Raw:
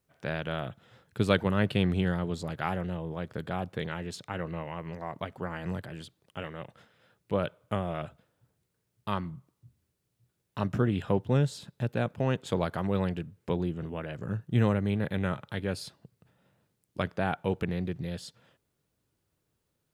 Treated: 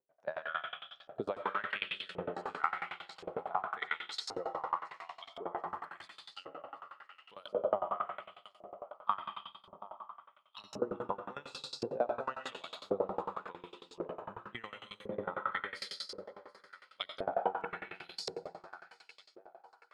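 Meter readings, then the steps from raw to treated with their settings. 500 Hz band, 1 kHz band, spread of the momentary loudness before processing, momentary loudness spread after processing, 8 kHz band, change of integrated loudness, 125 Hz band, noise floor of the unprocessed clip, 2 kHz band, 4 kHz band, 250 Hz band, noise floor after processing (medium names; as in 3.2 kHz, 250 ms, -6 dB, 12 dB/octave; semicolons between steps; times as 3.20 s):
-5.5 dB, 0.0 dB, 15 LU, 17 LU, -5.5 dB, -7.5 dB, -26.5 dB, -79 dBFS, -3.5 dB, -1.5 dB, -17.5 dB, -68 dBFS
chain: bass shelf 300 Hz -7.5 dB; spectral noise reduction 11 dB; de-hum 61.77 Hz, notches 8; on a send: thinning echo 729 ms, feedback 53%, high-pass 400 Hz, level -15 dB; on the sum: algorithmic reverb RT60 1.8 s, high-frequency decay 0.9×, pre-delay 45 ms, DRR 1.5 dB; compression 10:1, threshold -32 dBFS, peak gain reduction 12.5 dB; LFO band-pass saw up 0.93 Hz 420–5300 Hz; sawtooth tremolo in dB decaying 11 Hz, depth 24 dB; trim +15.5 dB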